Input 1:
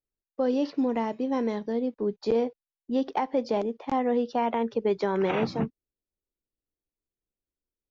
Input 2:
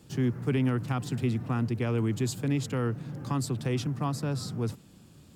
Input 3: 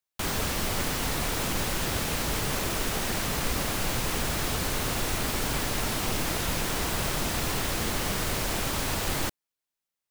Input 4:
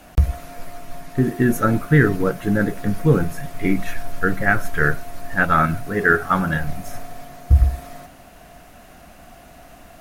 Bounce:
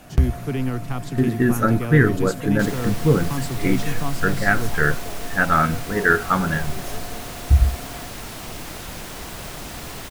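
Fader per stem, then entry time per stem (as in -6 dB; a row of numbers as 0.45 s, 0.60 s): -15.0 dB, +1.5 dB, -5.5 dB, -1.0 dB; 1.55 s, 0.00 s, 2.40 s, 0.00 s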